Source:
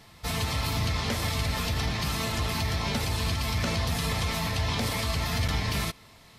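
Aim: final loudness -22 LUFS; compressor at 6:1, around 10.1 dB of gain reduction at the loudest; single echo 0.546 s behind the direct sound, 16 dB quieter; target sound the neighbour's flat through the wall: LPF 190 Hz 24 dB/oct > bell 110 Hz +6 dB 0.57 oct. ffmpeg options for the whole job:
-af "acompressor=threshold=-35dB:ratio=6,lowpass=f=190:w=0.5412,lowpass=f=190:w=1.3066,equalizer=f=110:t=o:w=0.57:g=6,aecho=1:1:546:0.158,volume=17dB"

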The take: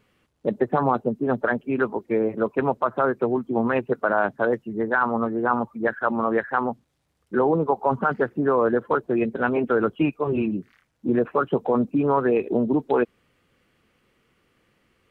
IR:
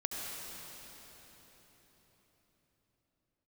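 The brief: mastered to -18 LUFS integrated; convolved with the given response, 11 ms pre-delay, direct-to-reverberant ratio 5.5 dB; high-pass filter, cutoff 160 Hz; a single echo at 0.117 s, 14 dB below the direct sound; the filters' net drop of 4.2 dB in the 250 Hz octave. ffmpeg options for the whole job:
-filter_complex "[0:a]highpass=160,equalizer=f=250:t=o:g=-4.5,aecho=1:1:117:0.2,asplit=2[a][b];[1:a]atrim=start_sample=2205,adelay=11[c];[b][c]afir=irnorm=-1:irlink=0,volume=-9dB[d];[a][d]amix=inputs=2:normalize=0,volume=6dB"

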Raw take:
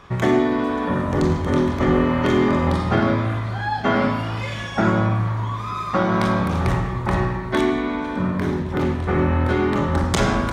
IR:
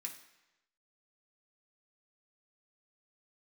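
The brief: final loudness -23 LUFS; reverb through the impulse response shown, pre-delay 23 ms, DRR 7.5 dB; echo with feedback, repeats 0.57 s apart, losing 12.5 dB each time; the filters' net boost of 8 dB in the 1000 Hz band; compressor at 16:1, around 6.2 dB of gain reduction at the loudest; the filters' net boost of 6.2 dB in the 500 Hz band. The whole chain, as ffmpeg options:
-filter_complex "[0:a]equalizer=f=500:t=o:g=6.5,equalizer=f=1k:t=o:g=8,acompressor=threshold=-15dB:ratio=16,aecho=1:1:570|1140|1710:0.237|0.0569|0.0137,asplit=2[a][b];[1:a]atrim=start_sample=2205,adelay=23[c];[b][c]afir=irnorm=-1:irlink=0,volume=-4.5dB[d];[a][d]amix=inputs=2:normalize=0,volume=-3dB"

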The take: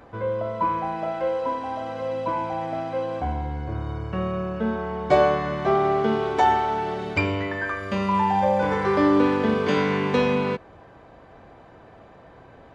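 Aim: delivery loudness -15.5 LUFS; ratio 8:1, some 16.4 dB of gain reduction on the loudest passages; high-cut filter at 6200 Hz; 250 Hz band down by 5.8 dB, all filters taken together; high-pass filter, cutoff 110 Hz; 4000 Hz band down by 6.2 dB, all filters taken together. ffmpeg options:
-af "highpass=110,lowpass=6.2k,equalizer=f=250:t=o:g=-7.5,equalizer=f=4k:t=o:g=-8.5,acompressor=threshold=-32dB:ratio=8,volume=20dB"

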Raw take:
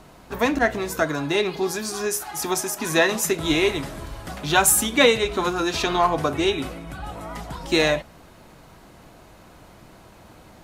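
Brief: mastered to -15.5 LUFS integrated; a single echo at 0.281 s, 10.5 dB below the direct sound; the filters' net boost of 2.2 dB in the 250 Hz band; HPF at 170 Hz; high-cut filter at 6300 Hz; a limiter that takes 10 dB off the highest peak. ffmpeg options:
-af "highpass=170,lowpass=6.3k,equalizer=f=250:t=o:g=4,alimiter=limit=-13dB:level=0:latency=1,aecho=1:1:281:0.299,volume=9dB"

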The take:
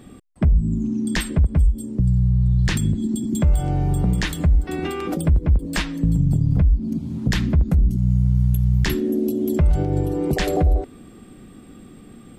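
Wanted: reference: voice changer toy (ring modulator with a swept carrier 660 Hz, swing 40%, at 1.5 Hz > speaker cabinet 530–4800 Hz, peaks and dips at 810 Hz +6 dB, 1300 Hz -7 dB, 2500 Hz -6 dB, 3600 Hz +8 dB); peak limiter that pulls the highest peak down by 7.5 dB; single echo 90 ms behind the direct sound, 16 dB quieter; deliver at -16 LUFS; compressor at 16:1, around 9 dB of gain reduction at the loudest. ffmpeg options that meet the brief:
-af "acompressor=threshold=-21dB:ratio=16,alimiter=limit=-19.5dB:level=0:latency=1,aecho=1:1:90:0.158,aeval=exprs='val(0)*sin(2*PI*660*n/s+660*0.4/1.5*sin(2*PI*1.5*n/s))':c=same,highpass=530,equalizer=f=810:t=q:w=4:g=6,equalizer=f=1.3k:t=q:w=4:g=-7,equalizer=f=2.5k:t=q:w=4:g=-6,equalizer=f=3.6k:t=q:w=4:g=8,lowpass=f=4.8k:w=0.5412,lowpass=f=4.8k:w=1.3066,volume=13.5dB"

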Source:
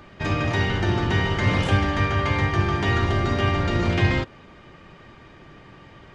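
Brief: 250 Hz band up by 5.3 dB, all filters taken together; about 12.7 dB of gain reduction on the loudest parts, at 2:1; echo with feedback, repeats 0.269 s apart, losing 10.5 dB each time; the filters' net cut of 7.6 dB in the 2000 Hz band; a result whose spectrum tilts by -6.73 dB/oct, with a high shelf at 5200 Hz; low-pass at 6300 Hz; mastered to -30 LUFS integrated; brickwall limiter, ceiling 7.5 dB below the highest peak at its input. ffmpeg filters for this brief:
-af "lowpass=6.3k,equalizer=f=250:t=o:g=7.5,equalizer=f=2k:t=o:g=-8,highshelf=f=5.2k:g=-8,acompressor=threshold=-39dB:ratio=2,alimiter=level_in=3dB:limit=-24dB:level=0:latency=1,volume=-3dB,aecho=1:1:269|538|807:0.299|0.0896|0.0269,volume=6.5dB"

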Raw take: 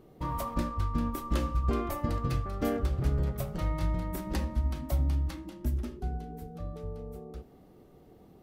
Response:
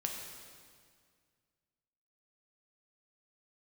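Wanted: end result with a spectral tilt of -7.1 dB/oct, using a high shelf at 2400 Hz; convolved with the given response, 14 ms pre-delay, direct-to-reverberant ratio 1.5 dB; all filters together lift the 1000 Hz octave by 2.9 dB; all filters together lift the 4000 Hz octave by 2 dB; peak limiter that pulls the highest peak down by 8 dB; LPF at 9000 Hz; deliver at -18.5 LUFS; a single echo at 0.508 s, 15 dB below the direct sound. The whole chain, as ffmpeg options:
-filter_complex "[0:a]lowpass=9k,equalizer=f=1k:t=o:g=4,highshelf=f=2.4k:g=-4,equalizer=f=4k:t=o:g=6,alimiter=limit=-24dB:level=0:latency=1,aecho=1:1:508:0.178,asplit=2[a][b];[1:a]atrim=start_sample=2205,adelay=14[c];[b][c]afir=irnorm=-1:irlink=0,volume=-3dB[d];[a][d]amix=inputs=2:normalize=0,volume=14dB"

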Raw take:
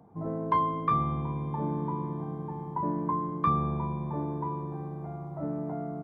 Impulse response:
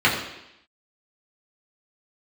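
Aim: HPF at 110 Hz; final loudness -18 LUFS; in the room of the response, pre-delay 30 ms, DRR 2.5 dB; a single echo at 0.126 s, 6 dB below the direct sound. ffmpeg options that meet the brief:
-filter_complex "[0:a]highpass=110,aecho=1:1:126:0.501,asplit=2[a][b];[1:a]atrim=start_sample=2205,adelay=30[c];[b][c]afir=irnorm=-1:irlink=0,volume=-23dB[d];[a][d]amix=inputs=2:normalize=0,volume=11dB"

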